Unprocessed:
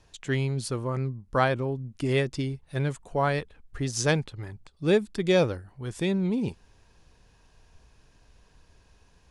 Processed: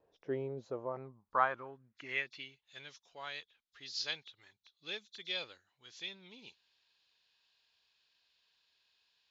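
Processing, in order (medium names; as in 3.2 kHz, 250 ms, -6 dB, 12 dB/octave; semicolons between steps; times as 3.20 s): knee-point frequency compression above 3.3 kHz 1.5:1; band-pass sweep 500 Hz -> 3.7 kHz, 0.52–2.75 s; trim -1 dB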